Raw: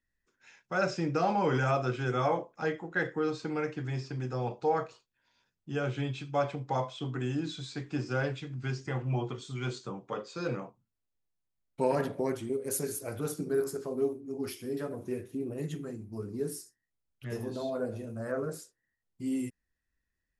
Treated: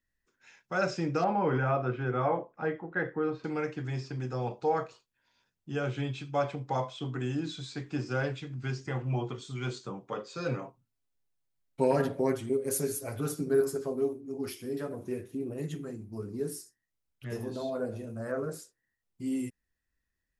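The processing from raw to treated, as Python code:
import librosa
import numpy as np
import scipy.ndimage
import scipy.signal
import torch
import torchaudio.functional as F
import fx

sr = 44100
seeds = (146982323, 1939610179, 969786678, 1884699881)

y = fx.lowpass(x, sr, hz=2000.0, slope=12, at=(1.24, 3.44))
y = fx.comb(y, sr, ms=7.4, depth=0.57, at=(10.3, 13.92))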